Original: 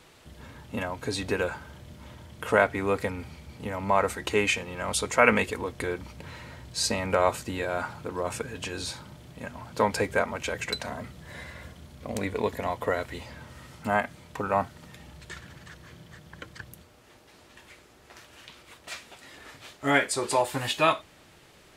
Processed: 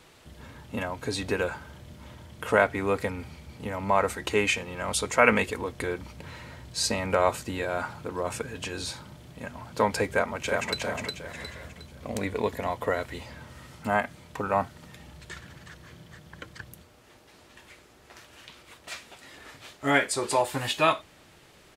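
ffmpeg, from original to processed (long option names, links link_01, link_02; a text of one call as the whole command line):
ffmpeg -i in.wav -filter_complex "[0:a]asplit=2[link_01][link_02];[link_02]afade=type=in:start_time=10.08:duration=0.01,afade=type=out:start_time=10.79:duration=0.01,aecho=0:1:360|720|1080|1440|1800:0.668344|0.267338|0.106935|0.042774|0.0171096[link_03];[link_01][link_03]amix=inputs=2:normalize=0" out.wav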